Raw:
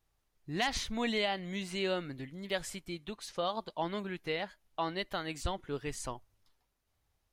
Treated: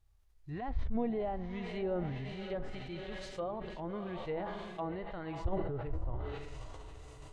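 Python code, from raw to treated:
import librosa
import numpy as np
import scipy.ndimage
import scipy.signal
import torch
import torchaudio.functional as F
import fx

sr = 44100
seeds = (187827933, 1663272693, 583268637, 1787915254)

p1 = fx.low_shelf_res(x, sr, hz=130.0, db=11.0, q=1.5)
p2 = fx.quant_float(p1, sr, bits=4)
p3 = p2 + fx.echo_diffused(p2, sr, ms=611, feedback_pct=49, wet_db=-11.0, dry=0)
p4 = fx.env_lowpass_down(p3, sr, base_hz=740.0, full_db=-30.0)
p5 = fx.hpss(p4, sr, part='percussive', gain_db=-11)
y = fx.sustainer(p5, sr, db_per_s=29.0)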